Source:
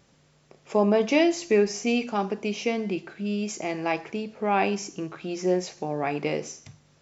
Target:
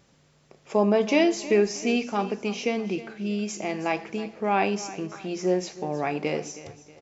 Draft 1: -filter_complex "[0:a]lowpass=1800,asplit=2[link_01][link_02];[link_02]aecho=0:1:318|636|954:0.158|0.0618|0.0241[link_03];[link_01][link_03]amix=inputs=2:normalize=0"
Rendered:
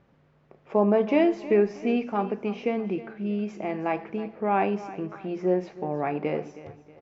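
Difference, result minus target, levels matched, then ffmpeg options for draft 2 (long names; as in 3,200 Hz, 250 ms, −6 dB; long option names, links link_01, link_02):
2,000 Hz band −4.5 dB
-filter_complex "[0:a]asplit=2[link_01][link_02];[link_02]aecho=0:1:318|636|954:0.158|0.0618|0.0241[link_03];[link_01][link_03]amix=inputs=2:normalize=0"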